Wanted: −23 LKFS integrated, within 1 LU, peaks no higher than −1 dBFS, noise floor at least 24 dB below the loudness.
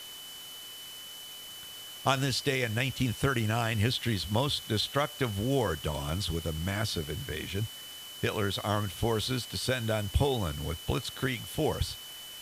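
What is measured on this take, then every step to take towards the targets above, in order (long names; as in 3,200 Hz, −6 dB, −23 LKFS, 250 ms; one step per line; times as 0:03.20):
interfering tone 3,000 Hz; level of the tone −44 dBFS; background noise floor −45 dBFS; target noise floor −55 dBFS; integrated loudness −31.0 LKFS; sample peak −12.0 dBFS; target loudness −23.0 LKFS
→ notch filter 3,000 Hz, Q 30
broadband denoise 10 dB, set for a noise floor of −45 dBFS
level +8 dB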